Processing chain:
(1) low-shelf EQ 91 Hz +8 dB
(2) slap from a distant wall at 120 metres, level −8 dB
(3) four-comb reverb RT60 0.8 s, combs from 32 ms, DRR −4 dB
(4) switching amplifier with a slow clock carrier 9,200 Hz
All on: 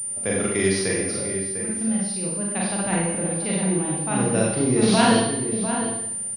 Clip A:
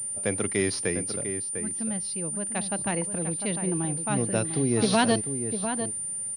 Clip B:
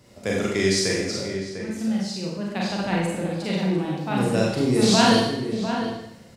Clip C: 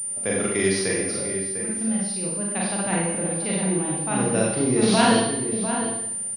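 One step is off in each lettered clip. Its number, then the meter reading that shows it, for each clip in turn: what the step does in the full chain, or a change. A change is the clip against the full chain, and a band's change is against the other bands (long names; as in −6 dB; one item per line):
3, 8 kHz band +2.0 dB
4, 8 kHz band −10.0 dB
1, 125 Hz band −2.0 dB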